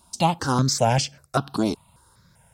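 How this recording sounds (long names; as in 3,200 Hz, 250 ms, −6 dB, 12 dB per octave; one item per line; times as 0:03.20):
notches that jump at a steady rate 5.1 Hz 490–3,800 Hz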